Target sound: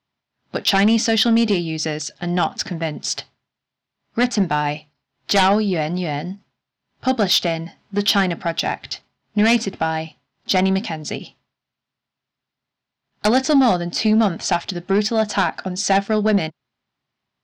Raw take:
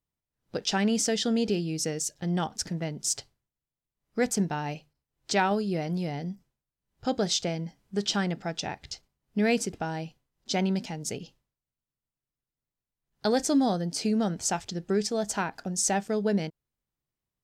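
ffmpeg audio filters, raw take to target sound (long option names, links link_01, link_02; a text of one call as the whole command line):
ffmpeg -i in.wav -af "highpass=160,equalizer=frequency=170:width_type=q:width=4:gain=-7,equalizer=frequency=320:width_type=q:width=4:gain=-6,equalizer=frequency=480:width_type=q:width=4:gain=-10,lowpass=frequency=4700:width=0.5412,lowpass=frequency=4700:width=1.3066,aeval=exprs='0.282*sin(PI/2*3.55*val(0)/0.282)':channel_layout=same" out.wav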